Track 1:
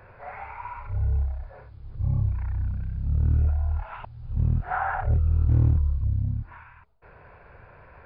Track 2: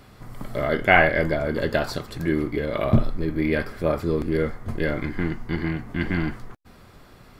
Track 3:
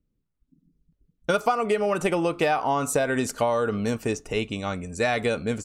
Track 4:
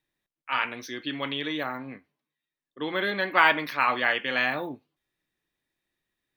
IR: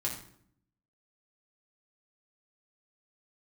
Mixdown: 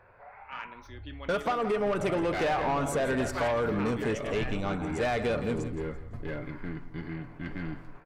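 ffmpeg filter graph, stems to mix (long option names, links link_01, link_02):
-filter_complex "[0:a]lowshelf=frequency=240:gain=-9,acompressor=threshold=-44dB:ratio=2,volume=-5dB[link_01];[1:a]agate=range=-33dB:threshold=-34dB:ratio=3:detection=peak,aecho=1:1:7.1:0.38,volume=17dB,asoftclip=hard,volume=-17dB,adelay=1450,volume=-11dB,asplit=2[link_02][link_03];[link_03]volume=-17dB[link_04];[2:a]acontrast=38,aeval=exprs='clip(val(0),-1,0.237)':channel_layout=same,volume=-6.5dB,asplit=2[link_05][link_06];[link_06]volume=-13dB[link_07];[3:a]volume=-12dB[link_08];[link_04][link_07]amix=inputs=2:normalize=0,aecho=0:1:169|338|507|676|845:1|0.33|0.109|0.0359|0.0119[link_09];[link_01][link_02][link_05][link_08][link_09]amix=inputs=5:normalize=0,highshelf=frequency=4400:gain=-10.5,asoftclip=type=tanh:threshold=-22.5dB"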